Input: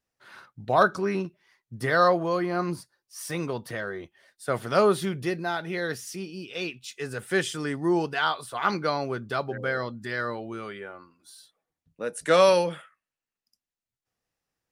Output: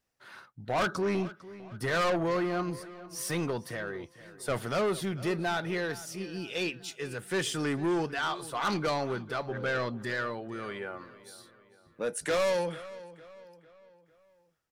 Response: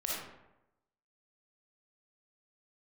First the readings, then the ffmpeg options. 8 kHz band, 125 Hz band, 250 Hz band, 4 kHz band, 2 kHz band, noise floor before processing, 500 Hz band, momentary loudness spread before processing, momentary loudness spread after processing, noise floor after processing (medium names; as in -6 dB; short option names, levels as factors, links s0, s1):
-0.5 dB, -2.5 dB, -3.0 dB, -3.0 dB, -4.0 dB, under -85 dBFS, -5.5 dB, 15 LU, 17 LU, -65 dBFS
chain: -filter_complex "[0:a]tremolo=f=0.91:d=0.49,asoftclip=type=tanh:threshold=0.0447,asplit=2[s0][s1];[s1]adelay=451,lowpass=f=4600:p=1,volume=0.141,asplit=2[s2][s3];[s3]adelay=451,lowpass=f=4600:p=1,volume=0.46,asplit=2[s4][s5];[s5]adelay=451,lowpass=f=4600:p=1,volume=0.46,asplit=2[s6][s7];[s7]adelay=451,lowpass=f=4600:p=1,volume=0.46[s8];[s0][s2][s4][s6][s8]amix=inputs=5:normalize=0,volume=1.33"